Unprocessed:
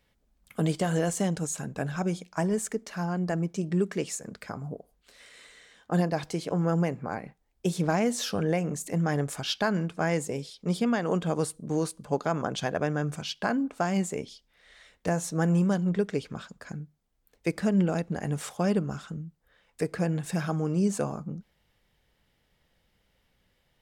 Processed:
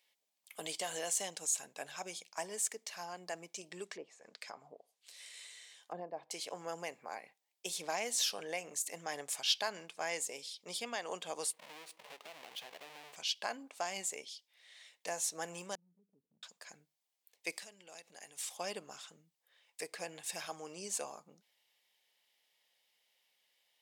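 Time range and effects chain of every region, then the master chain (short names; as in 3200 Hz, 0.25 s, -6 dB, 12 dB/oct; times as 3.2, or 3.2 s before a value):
3.85–6.31 treble ducked by the level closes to 720 Hz, closed at -27.5 dBFS + high shelf 6000 Hz +7 dB
11.53–13.16 half-waves squared off + tone controls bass -3 dB, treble -13 dB + compressor 8:1, threshold -37 dBFS
15.75–16.43 ladder low-pass 250 Hz, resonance 35% + compressor 3:1, threshold -44 dBFS
17.52–18.51 high shelf 2100 Hz +9 dB + compressor 10:1, threshold -37 dBFS
whole clip: HPF 1100 Hz 12 dB/oct; bell 1400 Hz -13.5 dB 0.76 oct; gain +1 dB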